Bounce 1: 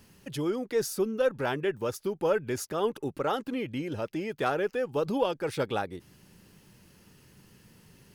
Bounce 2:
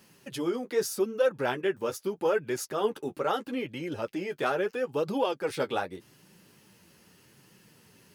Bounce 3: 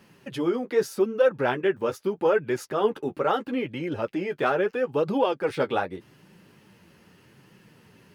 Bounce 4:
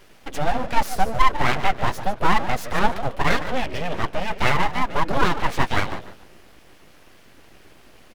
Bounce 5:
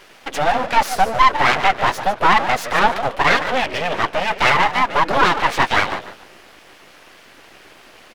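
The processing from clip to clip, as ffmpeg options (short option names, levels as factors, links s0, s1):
-af "highpass=f=230:p=1,flanger=delay=5.2:depth=8.1:regen=-24:speed=0.79:shape=triangular,volume=1.68"
-af "bass=f=250:g=1,treble=f=4000:g=-11,volume=1.68"
-filter_complex "[0:a]asplit=4[s0][s1][s2][s3];[s1]adelay=146,afreqshift=-77,volume=0.251[s4];[s2]adelay=292,afreqshift=-154,volume=0.075[s5];[s3]adelay=438,afreqshift=-231,volume=0.0226[s6];[s0][s4][s5][s6]amix=inputs=4:normalize=0,aeval=exprs='abs(val(0))':c=same,volume=2.24"
-filter_complex "[0:a]asplit=2[s0][s1];[s1]highpass=f=720:p=1,volume=5.62,asoftclip=type=tanh:threshold=0.841[s2];[s0][s2]amix=inputs=2:normalize=0,lowpass=f=5400:p=1,volume=0.501"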